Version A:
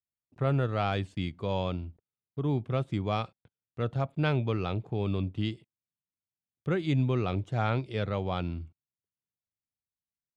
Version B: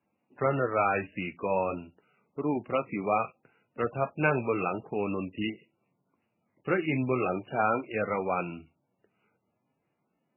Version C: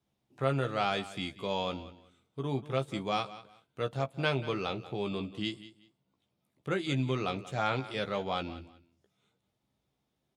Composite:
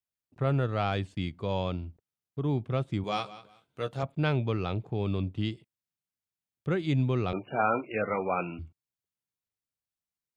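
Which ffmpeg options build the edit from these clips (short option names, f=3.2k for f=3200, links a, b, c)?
-filter_complex "[0:a]asplit=3[a][b][c];[a]atrim=end=3.042[d];[2:a]atrim=start=3.038:end=4.032[e];[b]atrim=start=4.028:end=7.332[f];[1:a]atrim=start=7.328:end=8.592[g];[c]atrim=start=8.588[h];[d][e]acrossfade=d=0.004:c1=hsin:c2=hsin[i];[i][f]acrossfade=d=0.004:c1=hsin:c2=hsin[j];[j][g]acrossfade=d=0.004:c1=hsin:c2=hsin[k];[k][h]acrossfade=d=0.004:c1=hsin:c2=hsin"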